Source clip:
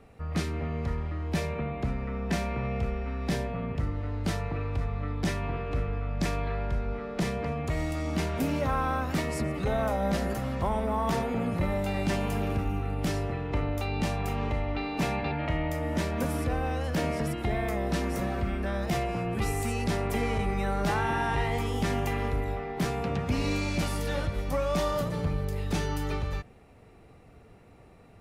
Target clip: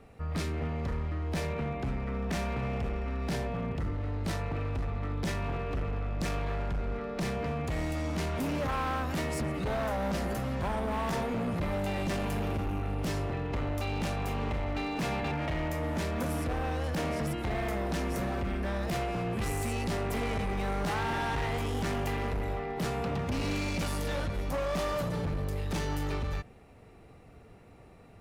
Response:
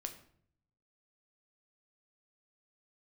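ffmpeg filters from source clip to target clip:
-af "volume=28.5dB,asoftclip=hard,volume=-28.5dB"

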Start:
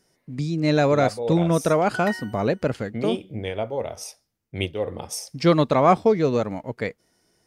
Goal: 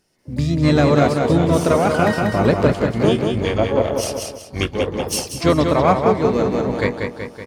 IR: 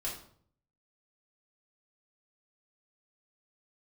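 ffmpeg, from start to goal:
-filter_complex "[0:a]asplit=4[link_01][link_02][link_03][link_04];[link_02]asetrate=22050,aresample=44100,atempo=2,volume=-8dB[link_05];[link_03]asetrate=37084,aresample=44100,atempo=1.18921,volume=-9dB[link_06];[link_04]asetrate=88200,aresample=44100,atempo=0.5,volume=-16dB[link_07];[link_01][link_05][link_06][link_07]amix=inputs=4:normalize=0,aecho=1:1:188|376|564|752|940:0.562|0.247|0.109|0.0479|0.0211,dynaudnorm=framelen=110:gausssize=5:maxgain=14dB,volume=-2.5dB"

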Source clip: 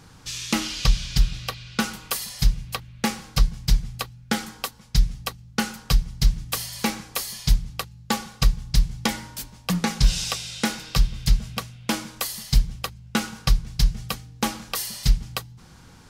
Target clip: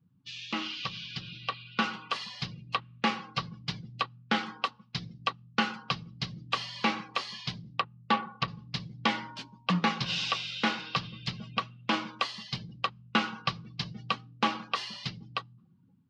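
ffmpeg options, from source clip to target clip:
ffmpeg -i in.wav -filter_complex "[0:a]asettb=1/sr,asplit=3[link_01][link_02][link_03];[link_01]atrim=end=7.774[link_04];[link_02]atrim=start=7.77:end=8.48,asetpts=PTS-STARTPTS,afade=type=in:duration=0.004:curve=qsin,afade=type=out:start_time=0.706:duration=0.004:curve=qsin,adynamicsmooth=sensitivity=2:basefreq=2400[link_05];[link_03]atrim=start=8.476[link_06];[link_04][link_05]acrossfade=duration=0.004:curve1=hsin:curve2=qsin[link_07];[link_07][link_06]acrossfade=duration=0.004:curve1=qsin:curve2=hsin,alimiter=limit=-12.5dB:level=0:latency=1:release=42,dynaudnorm=framelen=630:gausssize=5:maxgain=6dB,afftdn=noise_reduction=33:noise_floor=-40,highpass=frequency=140:width=0.5412,highpass=frequency=140:width=1.3066,equalizer=frequency=150:width_type=q:width=4:gain=-6,equalizer=frequency=230:width_type=q:width=4:gain=-3,equalizer=frequency=450:width_type=q:width=4:gain=-3,equalizer=frequency=1100:width_type=q:width=4:gain=7,equalizer=frequency=2800:width_type=q:width=4:gain=5,lowpass=frequency=4200:width=0.5412,lowpass=frequency=4200:width=1.3066,volume=-6dB" out.wav

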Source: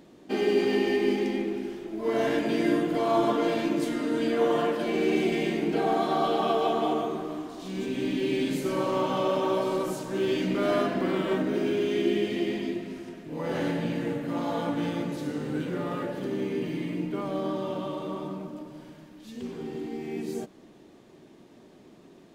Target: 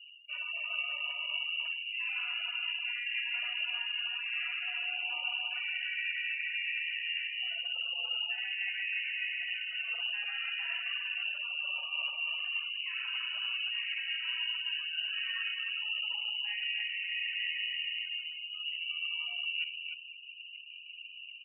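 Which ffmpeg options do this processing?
ffmpeg -i in.wav -filter_complex "[0:a]lowpass=frequency=2600:width_type=q:width=0.5098,lowpass=frequency=2600:width_type=q:width=0.6013,lowpass=frequency=2600:width_type=q:width=0.9,lowpass=frequency=2600:width_type=q:width=2.563,afreqshift=-3000,adynamicequalizer=threshold=0.00447:dfrequency=1700:dqfactor=5.2:tfrequency=1700:tqfactor=5.2:attack=5:release=100:ratio=0.375:range=2.5:mode=boostabove:tftype=bell,asetrate=45938,aresample=44100,areverse,acompressor=threshold=-38dB:ratio=12,areverse,highpass=frequency=390:poles=1,asplit=2[link_01][link_02];[link_02]aecho=0:1:52|124|301:0.473|0.316|0.668[link_03];[link_01][link_03]amix=inputs=2:normalize=0,afftfilt=real='re*gte(hypot(re,im),0.00631)':imag='im*gte(hypot(re,im),0.00631)':win_size=1024:overlap=0.75,volume=3dB" out.wav

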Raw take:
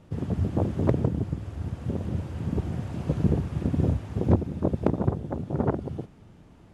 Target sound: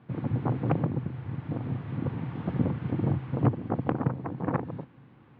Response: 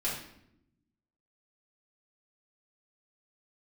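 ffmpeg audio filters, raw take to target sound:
-af "asetrate=55125,aresample=44100,highpass=130,equalizer=frequency=130:width_type=q:width=4:gain=5,equalizer=frequency=200:width_type=q:width=4:gain=-6,equalizer=frequency=400:width_type=q:width=4:gain=-8,equalizer=frequency=620:width_type=q:width=4:gain=-8,lowpass=frequency=2900:width=0.5412,lowpass=frequency=2900:width=1.3066"

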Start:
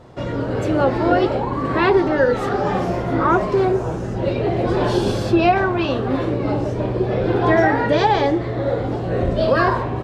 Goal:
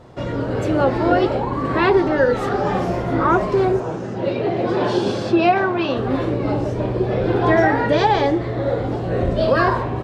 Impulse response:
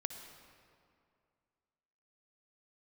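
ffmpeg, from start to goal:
-filter_complex "[0:a]asettb=1/sr,asplit=3[link_01][link_02][link_03];[link_01]atrim=end=3.804[link_04];[link_02]atrim=start=3.8:end=5.97,asetpts=PTS-STARTPTS,afade=type=in:duration=0.004:curve=qsin,afade=type=out:start_time=2.166:duration=0.004:curve=qsin,highpass=150,lowpass=6500[link_05];[link_03]atrim=start=5.966[link_06];[link_04][link_05]acrossfade=duration=0.004:curve1=hsin:curve2=qsin[link_07];[link_07][link_06]acrossfade=duration=0.004:curve1=qsin:curve2=hsin"

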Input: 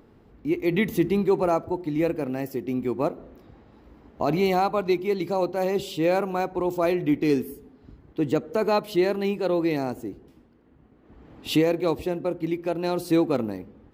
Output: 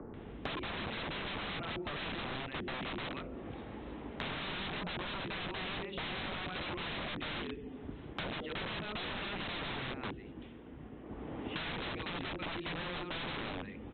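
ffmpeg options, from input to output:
ffmpeg -i in.wav -filter_complex "[0:a]tiltshelf=frequency=1400:gain=-3,acrossover=split=1400[link_01][link_02];[link_02]adelay=140[link_03];[link_01][link_03]amix=inputs=2:normalize=0,acrossover=split=130|1400[link_04][link_05][link_06];[link_06]acompressor=threshold=-45dB:ratio=12[link_07];[link_04][link_05][link_07]amix=inputs=3:normalize=0,alimiter=limit=-19dB:level=0:latency=1:release=21,aresample=8000,aeval=exprs='(mod(42.2*val(0)+1,2)-1)/42.2':channel_layout=same,aresample=44100,acrossover=split=140|310[link_08][link_09][link_10];[link_08]acompressor=threshold=-60dB:ratio=4[link_11];[link_09]acompressor=threshold=-57dB:ratio=4[link_12];[link_10]acompressor=threshold=-52dB:ratio=4[link_13];[link_11][link_12][link_13]amix=inputs=3:normalize=0,volume=10.5dB" out.wav

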